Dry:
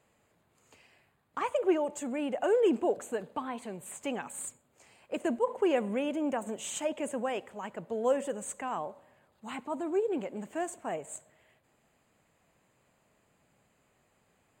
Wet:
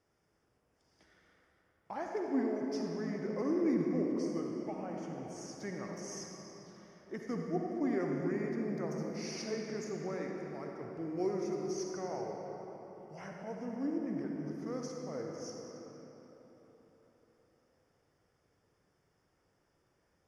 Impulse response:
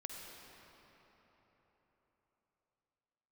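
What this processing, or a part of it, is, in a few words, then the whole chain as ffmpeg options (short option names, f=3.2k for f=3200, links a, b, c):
slowed and reverbed: -filter_complex "[0:a]asetrate=31752,aresample=44100[a];[1:a]atrim=start_sample=2205[b];[a][b]afir=irnorm=-1:irlink=0,volume=-3dB"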